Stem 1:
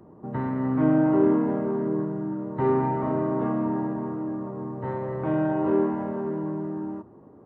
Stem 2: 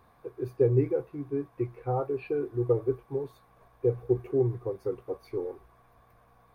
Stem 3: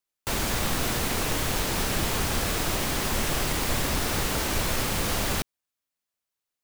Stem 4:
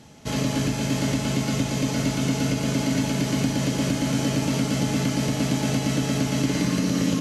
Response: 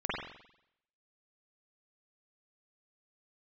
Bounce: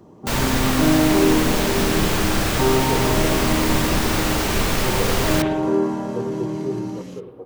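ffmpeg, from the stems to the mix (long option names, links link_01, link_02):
-filter_complex "[0:a]volume=3dB[link_01];[1:a]adelay=2300,volume=-6.5dB,asplit=2[link_02][link_03];[link_03]volume=-10.5dB[link_04];[2:a]equalizer=frequency=11000:width_type=o:width=0.79:gain=-3.5,volume=2.5dB,asplit=2[link_05][link_06];[link_06]volume=-9dB[link_07];[3:a]volume=-18.5dB,asplit=2[link_08][link_09];[link_09]volume=-12dB[link_10];[4:a]atrim=start_sample=2205[link_11];[link_04][link_07][link_10]amix=inputs=3:normalize=0[link_12];[link_12][link_11]afir=irnorm=-1:irlink=0[link_13];[link_01][link_02][link_05][link_08][link_13]amix=inputs=5:normalize=0"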